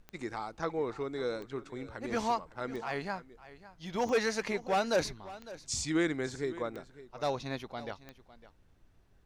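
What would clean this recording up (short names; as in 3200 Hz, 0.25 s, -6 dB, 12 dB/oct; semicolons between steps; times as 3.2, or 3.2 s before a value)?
de-click; expander -52 dBFS, range -21 dB; inverse comb 0.555 s -17 dB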